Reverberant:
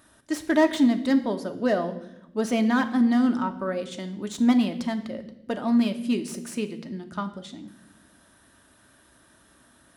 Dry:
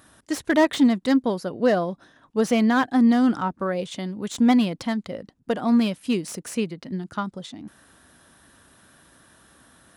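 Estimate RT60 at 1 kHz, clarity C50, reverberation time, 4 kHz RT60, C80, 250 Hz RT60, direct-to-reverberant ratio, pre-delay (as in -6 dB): 0.70 s, 13.0 dB, 0.85 s, 0.80 s, 15.0 dB, 1.5 s, 6.5 dB, 3 ms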